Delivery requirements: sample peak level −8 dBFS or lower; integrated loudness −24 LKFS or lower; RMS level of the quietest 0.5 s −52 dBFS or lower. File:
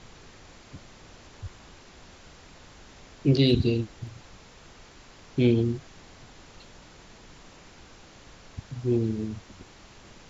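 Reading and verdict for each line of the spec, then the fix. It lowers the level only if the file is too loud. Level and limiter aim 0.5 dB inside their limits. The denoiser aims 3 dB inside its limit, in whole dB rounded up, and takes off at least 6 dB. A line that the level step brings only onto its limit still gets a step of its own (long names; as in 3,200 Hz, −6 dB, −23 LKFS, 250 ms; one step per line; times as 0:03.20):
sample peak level −9.0 dBFS: in spec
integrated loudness −26.0 LKFS: in spec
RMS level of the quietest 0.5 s −50 dBFS: out of spec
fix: broadband denoise 6 dB, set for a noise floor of −50 dBFS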